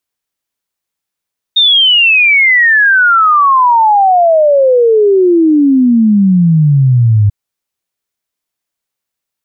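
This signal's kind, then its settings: log sweep 3.7 kHz -> 100 Hz 5.74 s -4.5 dBFS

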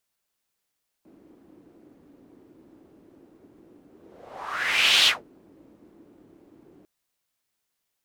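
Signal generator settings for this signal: whoosh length 5.80 s, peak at 4.01 s, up 1.21 s, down 0.19 s, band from 310 Hz, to 3.4 kHz, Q 3.5, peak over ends 36.5 dB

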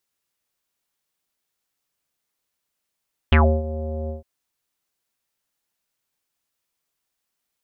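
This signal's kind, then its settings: synth note square D#2 24 dB/octave, low-pass 600 Hz, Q 7, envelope 2.5 oct, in 0.13 s, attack 2.4 ms, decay 0.30 s, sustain -16 dB, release 0.14 s, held 0.77 s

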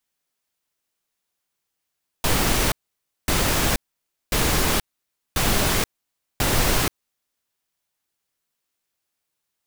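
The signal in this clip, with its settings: noise bursts pink, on 0.48 s, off 0.56 s, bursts 5, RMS -20 dBFS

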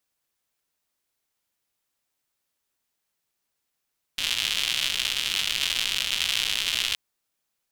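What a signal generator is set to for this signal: rain from filtered ticks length 2.77 s, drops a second 180, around 3.1 kHz, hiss -19 dB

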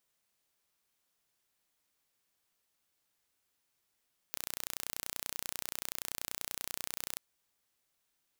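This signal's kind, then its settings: pulse train 30.4 per s, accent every 0, -10 dBFS 2.83 s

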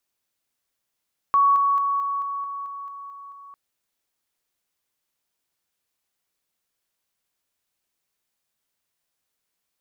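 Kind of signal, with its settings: level ladder 1.12 kHz -14 dBFS, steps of -3 dB, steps 10, 0.22 s 0.00 s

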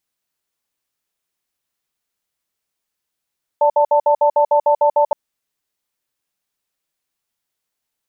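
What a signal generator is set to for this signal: cadence 585 Hz, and 888 Hz, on 0.09 s, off 0.06 s, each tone -13 dBFS 1.52 s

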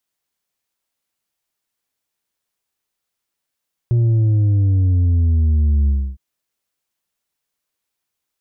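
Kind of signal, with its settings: sub drop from 120 Hz, over 2.26 s, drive 4.5 dB, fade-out 0.29 s, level -12.5 dB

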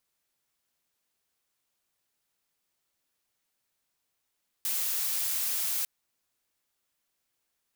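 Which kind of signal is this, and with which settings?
noise blue, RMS -30 dBFS 1.20 s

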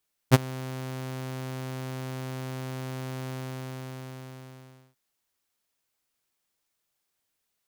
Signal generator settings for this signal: ADSR saw 130 Hz, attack 33 ms, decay 25 ms, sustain -23.5 dB, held 2.99 s, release 1650 ms -7 dBFS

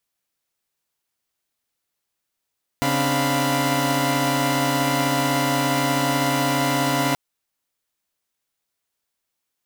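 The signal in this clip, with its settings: chord C#3/C4/D4/F5/B5 saw, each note -23 dBFS 4.33 s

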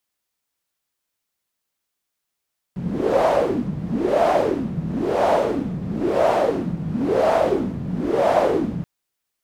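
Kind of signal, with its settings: wind-like swept noise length 6.08 s, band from 160 Hz, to 680 Hz, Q 4.9, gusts 6, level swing 9.5 dB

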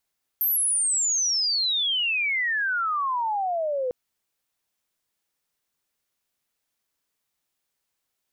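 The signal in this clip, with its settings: sweep logarithmic 13 kHz -> 490 Hz -20 dBFS -> -23.5 dBFS 3.50 s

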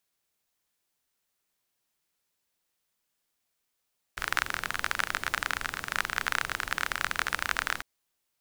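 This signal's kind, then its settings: rain from filtered ticks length 3.65 s, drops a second 29, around 1.5 kHz, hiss -12 dB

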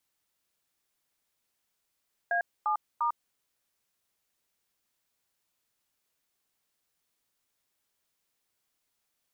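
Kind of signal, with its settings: DTMF "A7*", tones 100 ms, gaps 248 ms, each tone -27.5 dBFS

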